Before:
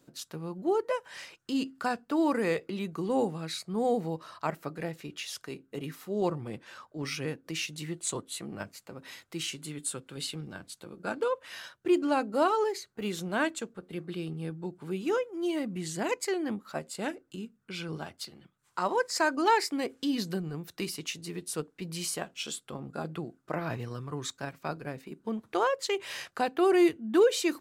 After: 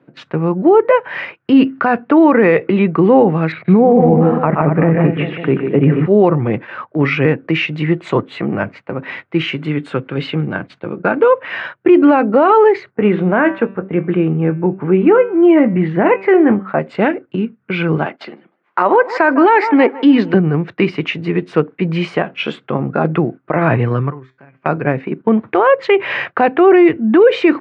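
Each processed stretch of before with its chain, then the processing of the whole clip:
3.52–6.06 LPF 3200 Hz 24 dB/oct + tilt -2.5 dB/oct + tapped delay 0.125/0.15/0.227/0.389/0.548 s -10.5/-7.5/-12.5/-16/-19 dB
12.91–16.79 LPF 2100 Hz + doubler 21 ms -12.5 dB + de-hum 193.5 Hz, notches 25
18.05–20.34 HPF 220 Hz 24 dB/oct + narrowing echo 0.155 s, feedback 43%, band-pass 900 Hz, level -17.5 dB
24.1–24.66 notch 3800 Hz, Q 11 + compressor 2.5:1, threshold -46 dBFS + resonator 130 Hz, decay 0.26 s, mix 70%
whole clip: gate -48 dBFS, range -11 dB; elliptic band-pass 110–2300 Hz, stop band 80 dB; maximiser +23.5 dB; gain -1 dB

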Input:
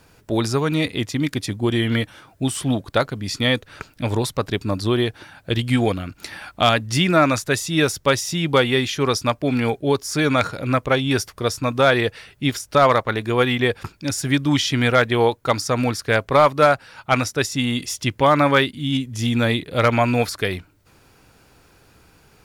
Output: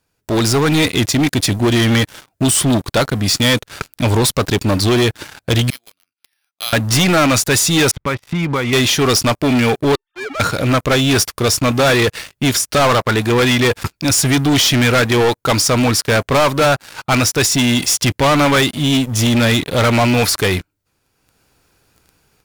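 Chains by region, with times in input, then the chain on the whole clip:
5.7–6.73 band-pass 7400 Hz, Q 2.7 + careless resampling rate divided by 6×, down filtered, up hold
7.91–8.73 LPF 2500 Hz 24 dB/oct + compressor 2.5:1, threshold -31 dBFS + comb 0.9 ms, depth 32%
9.95–10.4 sine-wave speech + resonator 900 Hz, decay 0.37 s, mix 90% + mismatched tape noise reduction encoder only
whole clip: high shelf 4000 Hz +6.5 dB; sample leveller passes 5; AGC; gain -8.5 dB

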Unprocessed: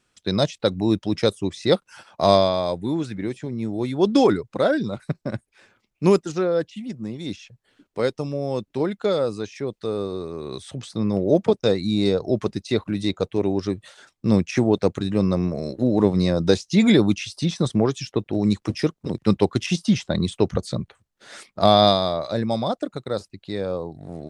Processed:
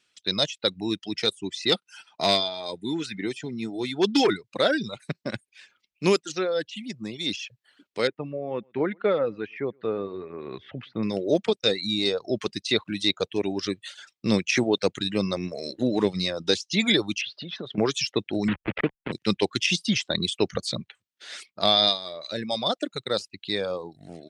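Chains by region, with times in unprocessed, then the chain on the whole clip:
1.03–4.44 HPF 63 Hz + notch comb 560 Hz + overloaded stage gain 11 dB
8.07–11.03 LPF 2100 Hz 24 dB/oct + echo 0.118 s -22.5 dB
17.21–17.78 G.711 law mismatch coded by mu + compressor 12:1, threshold -27 dBFS + speaker cabinet 110–3400 Hz, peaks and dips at 410 Hz +8 dB, 590 Hz +4 dB, 940 Hz -3 dB, 1500 Hz +5 dB, 2300 Hz -4 dB
18.48–19.12 level-crossing sampler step -22 dBFS + inverse Chebyshev low-pass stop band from 6000 Hz, stop band 50 dB + three-band squash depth 70%
whole clip: reverb removal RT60 0.87 s; weighting filter D; AGC gain up to 6.5 dB; gain -6.5 dB

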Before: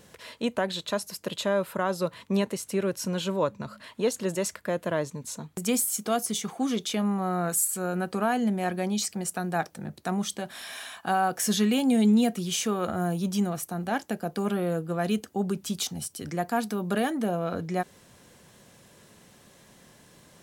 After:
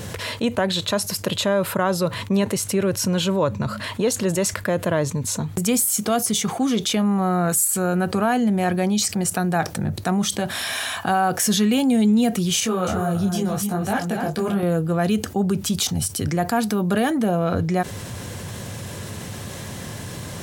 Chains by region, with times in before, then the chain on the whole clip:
12.6–14.63 echo 0.268 s -8.5 dB + detuned doubles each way 26 cents
whole clip: bell 98 Hz +14.5 dB 0.72 oct; fast leveller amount 50%; gain +1.5 dB

